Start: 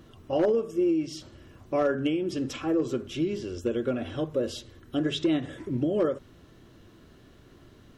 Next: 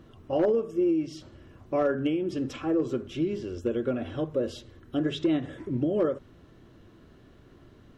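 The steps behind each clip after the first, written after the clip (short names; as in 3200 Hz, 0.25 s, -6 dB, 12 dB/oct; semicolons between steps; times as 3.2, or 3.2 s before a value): high shelf 3300 Hz -8.5 dB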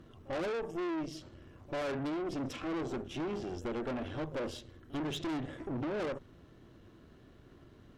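reverse echo 46 ms -24 dB; tube stage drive 35 dB, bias 0.8; gain +1.5 dB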